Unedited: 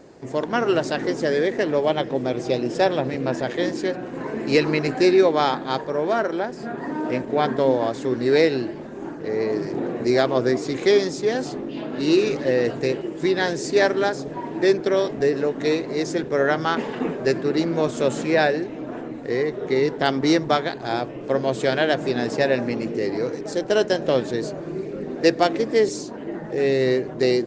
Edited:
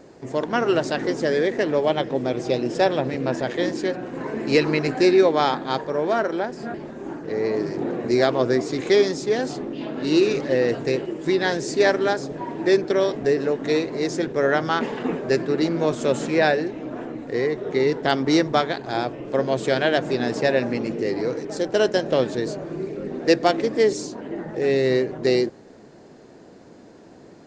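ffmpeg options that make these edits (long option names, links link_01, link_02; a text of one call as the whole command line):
ffmpeg -i in.wav -filter_complex "[0:a]asplit=2[link_01][link_02];[link_01]atrim=end=6.742[link_03];[link_02]atrim=start=8.698[link_04];[link_03][link_04]acrossfade=duration=0.004:curve1=hsin:curve2=hsin" out.wav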